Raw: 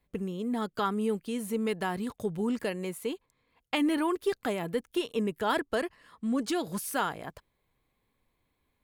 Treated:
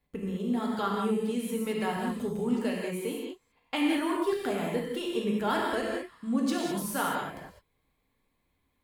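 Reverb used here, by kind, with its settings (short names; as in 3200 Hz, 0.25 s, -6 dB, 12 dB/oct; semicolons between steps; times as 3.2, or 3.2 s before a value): non-linear reverb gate 0.23 s flat, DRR -2.5 dB; gain -3.5 dB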